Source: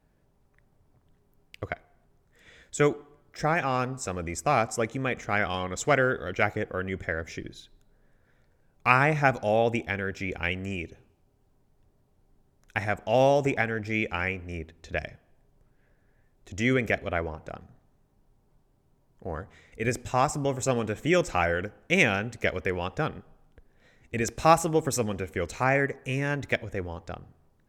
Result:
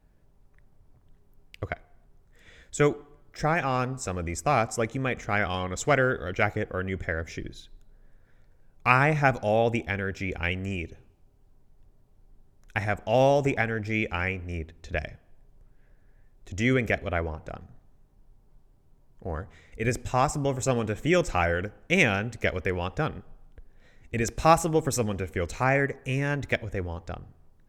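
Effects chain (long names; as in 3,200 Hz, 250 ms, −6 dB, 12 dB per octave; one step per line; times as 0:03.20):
low-shelf EQ 65 Hz +11.5 dB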